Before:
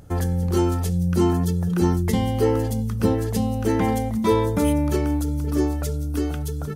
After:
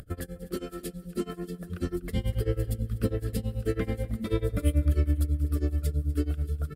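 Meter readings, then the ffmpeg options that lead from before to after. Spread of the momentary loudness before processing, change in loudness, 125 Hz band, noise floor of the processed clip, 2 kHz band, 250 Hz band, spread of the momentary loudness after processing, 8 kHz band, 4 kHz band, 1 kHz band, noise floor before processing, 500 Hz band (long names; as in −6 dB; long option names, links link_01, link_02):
5 LU, −8.0 dB, −6.0 dB, −48 dBFS, −8.5 dB, −11.5 dB, 10 LU, −11.0 dB, −9.0 dB, −19.5 dB, −27 dBFS, −10.5 dB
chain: -af "asubboost=boost=4:cutoff=89,bandreject=frequency=87.29:width_type=h:width=4,bandreject=frequency=174.58:width_type=h:width=4,bandreject=frequency=261.87:width_type=h:width=4,bandreject=frequency=349.16:width_type=h:width=4,flanger=delay=0.6:depth=6.3:regen=72:speed=0.41:shape=sinusoidal,acompressor=mode=upward:threshold=-38dB:ratio=2.5,tremolo=f=9.2:d=0.95,asuperstop=centerf=890:order=4:qfactor=1.7,equalizer=frequency=6200:width_type=o:width=0.27:gain=-13.5,aecho=1:1:245|490|735:0.112|0.0494|0.0217" -ar 48000 -c:a libopus -b:a 96k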